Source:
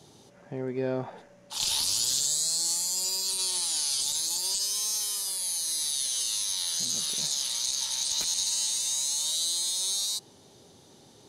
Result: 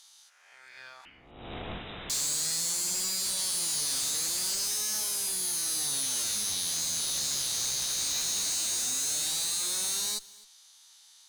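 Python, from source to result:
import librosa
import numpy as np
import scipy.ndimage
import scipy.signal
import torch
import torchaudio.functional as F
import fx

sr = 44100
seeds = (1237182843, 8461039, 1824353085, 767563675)

y = fx.spec_swells(x, sr, rise_s=0.85)
y = scipy.signal.sosfilt(scipy.signal.butter(4, 1100.0, 'highpass', fs=sr, output='sos'), y)
y = fx.high_shelf(y, sr, hz=2300.0, db=10.0)
y = fx.tube_stage(y, sr, drive_db=22.0, bias=0.5)
y = fx.freq_invert(y, sr, carrier_hz=3800, at=(1.05, 2.1))
y = y + 10.0 ** (-22.0 / 20.0) * np.pad(y, (int(258 * sr / 1000.0), 0))[:len(y)]
y = F.gain(torch.from_numpy(y), -5.5).numpy()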